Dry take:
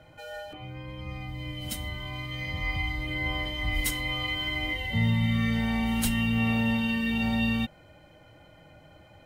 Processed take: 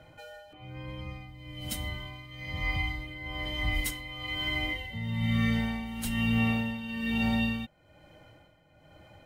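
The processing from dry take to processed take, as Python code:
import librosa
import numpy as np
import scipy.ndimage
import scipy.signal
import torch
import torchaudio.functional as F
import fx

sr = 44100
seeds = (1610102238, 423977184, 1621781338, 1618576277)

y = x * (1.0 - 0.72 / 2.0 + 0.72 / 2.0 * np.cos(2.0 * np.pi * 1.1 * (np.arange(len(x)) / sr)))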